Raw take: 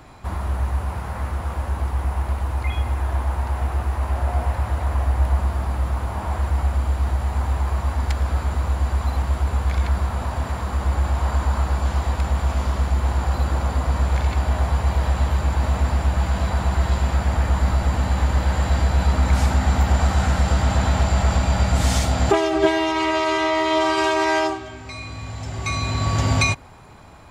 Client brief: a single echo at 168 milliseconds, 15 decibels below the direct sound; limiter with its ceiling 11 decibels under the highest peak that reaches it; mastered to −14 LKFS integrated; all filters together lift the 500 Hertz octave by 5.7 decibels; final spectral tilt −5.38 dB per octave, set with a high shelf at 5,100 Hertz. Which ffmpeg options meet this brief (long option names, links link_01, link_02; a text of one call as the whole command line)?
ffmpeg -i in.wav -af "equalizer=frequency=500:width_type=o:gain=8,highshelf=frequency=5100:gain=8,alimiter=limit=-11dB:level=0:latency=1,aecho=1:1:168:0.178,volume=7.5dB" out.wav